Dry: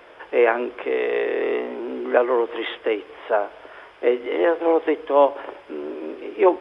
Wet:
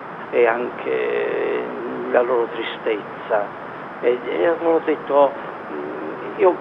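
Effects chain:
noise in a band 140–1,500 Hz −34 dBFS
level +1 dB

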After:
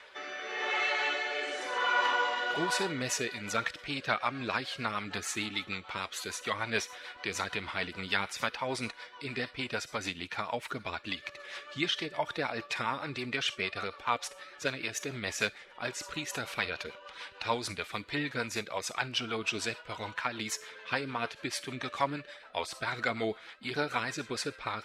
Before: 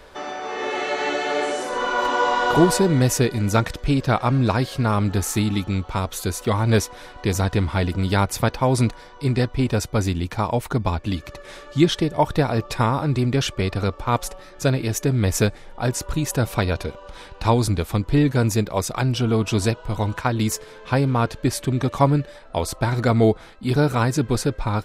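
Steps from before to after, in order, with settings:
spectral magnitudes quantised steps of 15 dB
resonant band-pass 2,300 Hz, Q 1
on a send at −9 dB: first difference + convolution reverb RT60 0.45 s, pre-delay 37 ms
on the sum: rotating-speaker cabinet horn 0.9 Hz, later 6.7 Hz, at 0:02.56
in parallel at −3 dB: downward compressor, threshold −41 dBFS, peak gain reduction 16 dB

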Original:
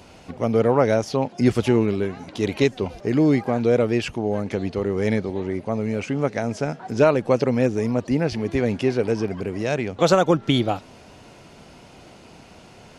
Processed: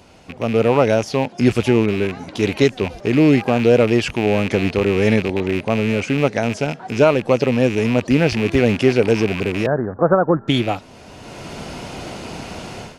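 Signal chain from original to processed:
loose part that buzzes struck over −32 dBFS, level −21 dBFS
automatic gain control gain up to 16 dB
0:09.66–0:10.48: Butterworth low-pass 1,700 Hz 96 dB per octave
level −1 dB

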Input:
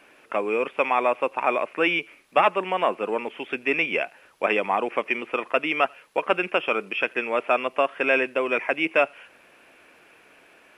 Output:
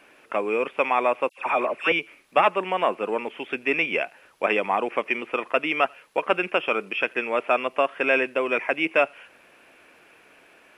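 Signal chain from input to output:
0:01.29–0:01.92: all-pass dispersion lows, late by 93 ms, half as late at 1,700 Hz

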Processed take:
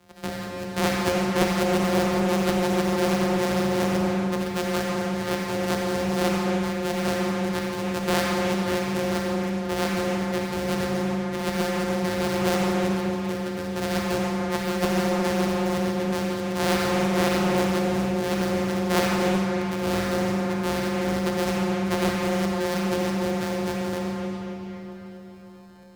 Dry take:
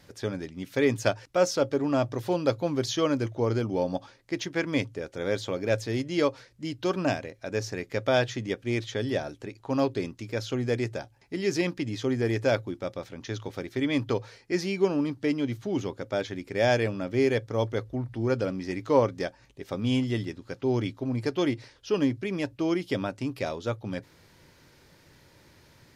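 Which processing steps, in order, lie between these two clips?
samples sorted by size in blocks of 256 samples
low-shelf EQ 180 Hz −4 dB
comb and all-pass reverb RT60 4.7 s, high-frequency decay 0.75×, pre-delay 0 ms, DRR −2.5 dB
frequency shifter +21 Hz
highs frequency-modulated by the lows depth 0.6 ms

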